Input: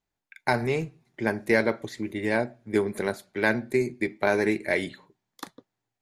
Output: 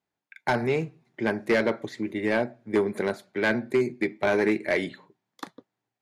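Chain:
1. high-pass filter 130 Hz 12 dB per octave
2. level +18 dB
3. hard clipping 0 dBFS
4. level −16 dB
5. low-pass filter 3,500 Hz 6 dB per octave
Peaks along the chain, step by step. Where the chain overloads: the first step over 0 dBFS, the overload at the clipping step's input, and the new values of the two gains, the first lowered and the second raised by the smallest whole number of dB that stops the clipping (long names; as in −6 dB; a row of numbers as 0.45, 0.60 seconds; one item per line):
−8.5, +9.5, 0.0, −16.0, −16.0 dBFS
step 2, 9.5 dB
step 2 +8 dB, step 4 −6 dB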